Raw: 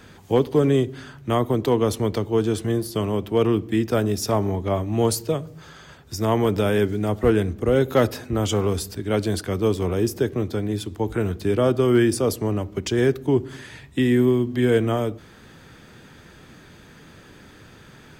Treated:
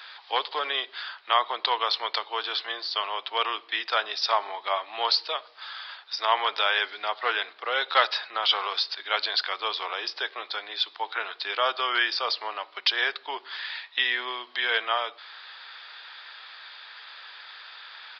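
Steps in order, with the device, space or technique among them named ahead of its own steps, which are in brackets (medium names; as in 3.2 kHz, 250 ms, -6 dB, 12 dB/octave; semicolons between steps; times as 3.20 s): musical greeting card (resampled via 11.025 kHz; high-pass 880 Hz 24 dB/octave; peaking EQ 3.9 kHz +8 dB 0.53 oct); trim +6 dB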